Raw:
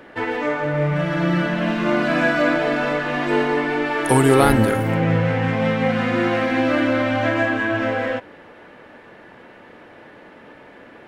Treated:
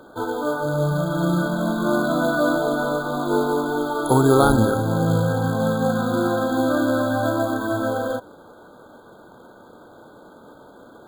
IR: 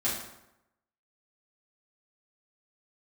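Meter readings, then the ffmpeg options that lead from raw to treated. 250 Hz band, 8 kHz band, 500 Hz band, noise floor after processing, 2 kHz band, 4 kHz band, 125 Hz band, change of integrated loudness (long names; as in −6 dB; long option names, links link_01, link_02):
−1.0 dB, −0.5 dB, −1.0 dB, −47 dBFS, −6.5 dB, −4.0 dB, −1.0 dB, −1.5 dB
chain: -af "acrusher=bits=4:mode=log:mix=0:aa=0.000001,afftfilt=real='re*eq(mod(floor(b*sr/1024/1600),2),0)':imag='im*eq(mod(floor(b*sr/1024/1600),2),0)':win_size=1024:overlap=0.75,volume=-1dB"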